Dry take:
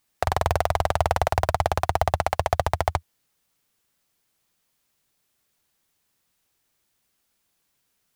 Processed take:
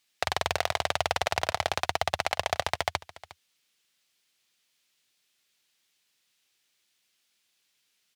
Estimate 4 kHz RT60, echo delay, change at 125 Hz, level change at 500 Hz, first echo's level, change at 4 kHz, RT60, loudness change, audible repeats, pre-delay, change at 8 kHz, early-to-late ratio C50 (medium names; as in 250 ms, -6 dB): no reverb, 358 ms, -13.5 dB, -6.5 dB, -18.5 dB, +5.0 dB, no reverb, -4.5 dB, 1, no reverb, +0.5 dB, no reverb